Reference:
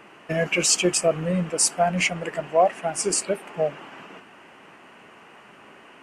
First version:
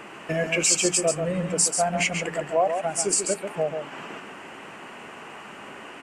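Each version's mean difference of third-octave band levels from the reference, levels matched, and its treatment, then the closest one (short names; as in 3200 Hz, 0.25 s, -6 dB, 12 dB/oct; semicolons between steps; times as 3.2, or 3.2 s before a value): 5.0 dB: bell 7600 Hz +6 dB 0.31 oct; notches 60/120/180 Hz; compressor 1.5:1, threshold -45 dBFS, peak gain reduction 11.5 dB; on a send: echo 0.138 s -6.5 dB; on the sum: gain +7 dB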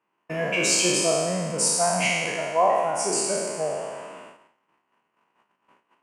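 8.5 dB: spectral trails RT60 1.64 s; HPF 97 Hz; bell 980 Hz +10 dB 0.29 oct; gate -39 dBFS, range -27 dB; gain -6 dB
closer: first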